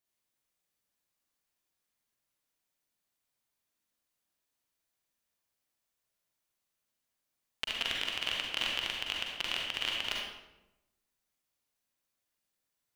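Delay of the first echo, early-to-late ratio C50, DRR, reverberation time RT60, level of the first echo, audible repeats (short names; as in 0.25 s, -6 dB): none, 0.0 dB, -2.0 dB, 0.95 s, none, none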